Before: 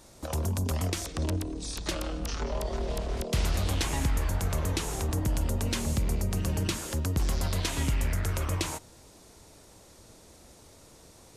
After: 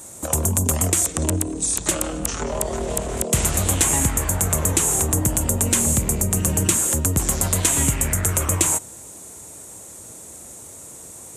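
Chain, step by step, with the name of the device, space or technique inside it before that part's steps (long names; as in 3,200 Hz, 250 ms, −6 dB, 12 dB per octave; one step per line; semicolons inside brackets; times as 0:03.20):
budget condenser microphone (high-pass filter 79 Hz 12 dB per octave; high shelf with overshoot 6,100 Hz +8 dB, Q 3)
level +8.5 dB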